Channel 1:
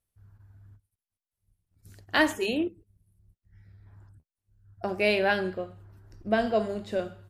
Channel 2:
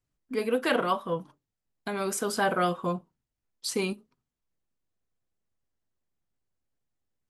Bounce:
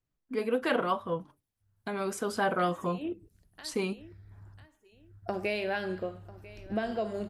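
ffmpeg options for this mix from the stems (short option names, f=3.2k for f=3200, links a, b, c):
-filter_complex "[0:a]acompressor=threshold=-30dB:ratio=5,adelay=450,volume=1dB,asplit=2[a][b];[b]volume=-19dB[c];[1:a]highshelf=f=4.4k:g=-8,volume=-2dB,asplit=2[d][e];[e]apad=whole_len=341568[f];[a][f]sidechaincompress=threshold=-46dB:ratio=8:attack=16:release=117[g];[c]aecho=0:1:995|1990|2985|3980:1|0.29|0.0841|0.0244[h];[g][d][h]amix=inputs=3:normalize=0"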